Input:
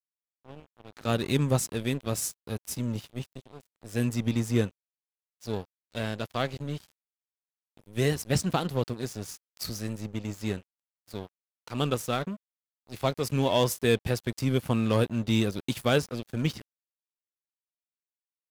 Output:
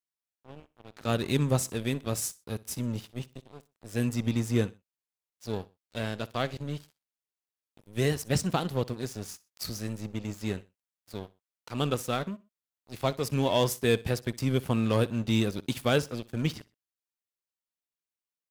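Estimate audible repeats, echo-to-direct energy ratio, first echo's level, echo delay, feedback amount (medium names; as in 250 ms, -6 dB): 2, -20.5 dB, -21.0 dB, 62 ms, 33%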